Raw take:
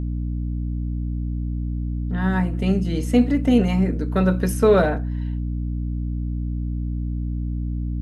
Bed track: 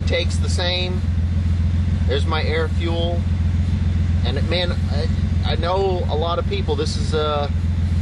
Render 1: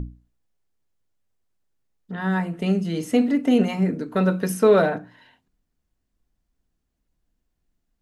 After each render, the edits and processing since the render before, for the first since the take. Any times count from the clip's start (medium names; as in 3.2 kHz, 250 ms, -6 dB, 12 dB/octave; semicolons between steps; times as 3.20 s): hum notches 60/120/180/240/300 Hz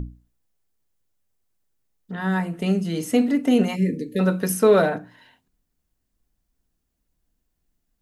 treble shelf 7.7 kHz +9 dB; 3.76–4.20 s: spectral selection erased 580–1700 Hz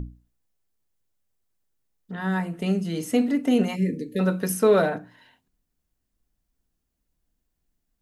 trim -2.5 dB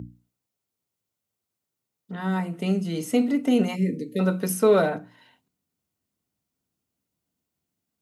high-pass 90 Hz 24 dB/octave; band-stop 1.7 kHz, Q 8.9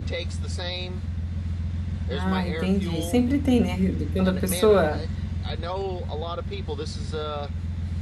add bed track -10 dB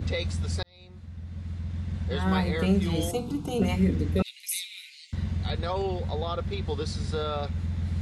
0.63–2.39 s: fade in; 3.11–3.62 s: static phaser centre 380 Hz, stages 8; 4.22–5.13 s: rippled Chebyshev high-pass 2.1 kHz, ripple 3 dB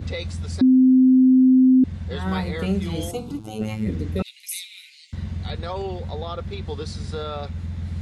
0.61–1.84 s: bleep 258 Hz -10.5 dBFS; 3.39–3.87 s: robot voice 108 Hz